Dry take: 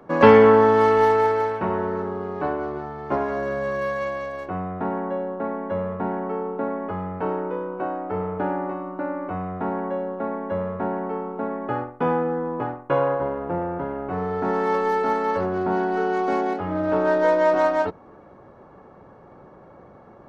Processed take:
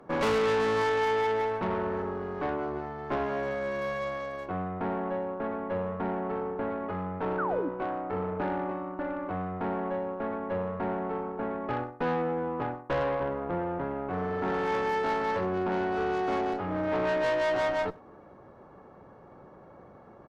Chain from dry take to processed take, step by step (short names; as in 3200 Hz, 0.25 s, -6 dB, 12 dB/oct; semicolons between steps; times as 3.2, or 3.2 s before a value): tube stage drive 22 dB, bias 0.5; painted sound fall, 7.38–7.69, 250–1600 Hz -29 dBFS; speakerphone echo 0.1 s, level -23 dB; gain -2 dB